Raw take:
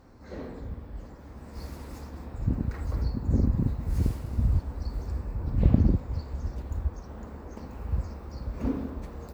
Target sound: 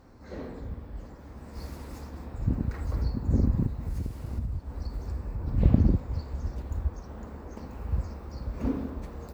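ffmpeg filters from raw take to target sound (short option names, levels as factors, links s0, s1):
-filter_complex "[0:a]asettb=1/sr,asplit=3[s0][s1][s2];[s0]atrim=end=3.664[s3];[s1]atrim=start=3.66:end=5.48,asetpts=PTS-STARTPTS,afade=t=in:d=0.004:c=qsin,afade=t=out:st=1.816:d=0.004:c=qsin,acompressor=threshold=0.0398:ratio=10[s4];[s2]atrim=start=5.476[s5];[s3][s4]acrossfade=d=0.004:c1=hsin:c2=qsin[s6];[s6][s5]acrossfade=d=0.004:c1=qsin:c2=hsin"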